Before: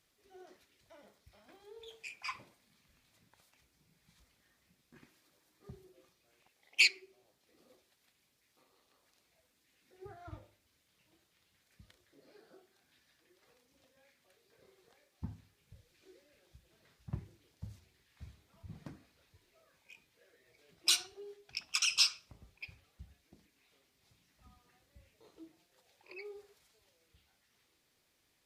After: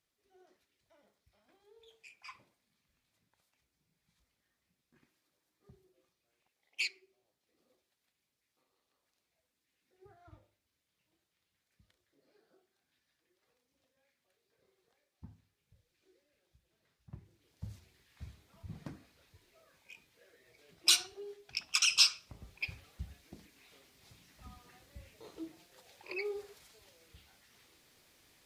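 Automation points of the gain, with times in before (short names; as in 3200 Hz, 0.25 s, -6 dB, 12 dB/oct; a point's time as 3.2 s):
17.2 s -9.5 dB
17.69 s +3 dB
22.17 s +3 dB
22.66 s +9.5 dB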